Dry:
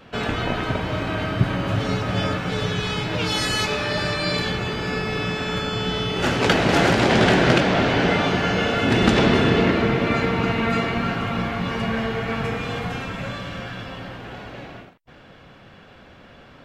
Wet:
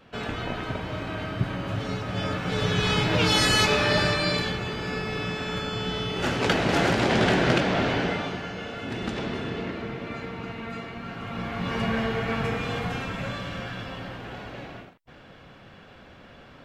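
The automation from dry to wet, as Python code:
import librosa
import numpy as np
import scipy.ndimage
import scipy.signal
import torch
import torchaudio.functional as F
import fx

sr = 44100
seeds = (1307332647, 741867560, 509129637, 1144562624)

y = fx.gain(x, sr, db=fx.line((2.12, -7.0), (2.91, 2.0), (3.95, 2.0), (4.59, -5.0), (7.91, -5.0), (8.52, -14.0), (11.01, -14.0), (11.78, -2.0)))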